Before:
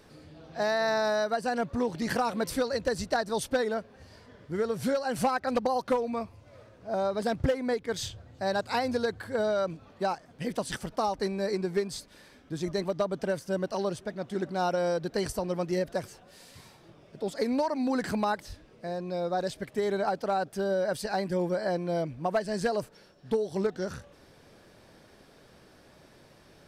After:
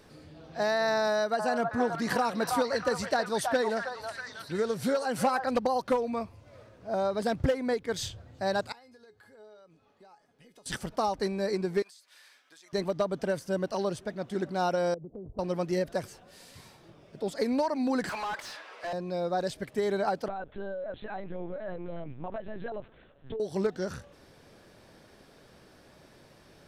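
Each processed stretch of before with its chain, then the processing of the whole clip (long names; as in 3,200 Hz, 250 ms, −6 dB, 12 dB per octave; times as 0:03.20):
0:01.07–0:05.46: high-pass filter 110 Hz + echo through a band-pass that steps 320 ms, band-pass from 1,000 Hz, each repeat 0.7 octaves, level −0.5 dB
0:08.72–0:10.66: low-shelf EQ 120 Hz −11.5 dB + downward compressor 4 to 1, threshold −43 dBFS + tuned comb filter 420 Hz, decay 0.23 s, mix 80%
0:11.82–0:12.73: high-pass filter 1,300 Hz + downward compressor 20 to 1, threshold −51 dBFS
0:14.94–0:15.39: Gaussian smoothing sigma 14 samples + downward compressor 4 to 1, threshold −40 dBFS
0:18.09–0:18.93: Chebyshev high-pass filter 1,000 Hz + downward compressor 3 to 1, threshold −35 dBFS + mid-hump overdrive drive 28 dB, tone 1,800 Hz, clips at −26 dBFS
0:20.28–0:23.40: downward compressor 4 to 1, threshold −34 dBFS + linear-prediction vocoder at 8 kHz pitch kept
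whole clip: no processing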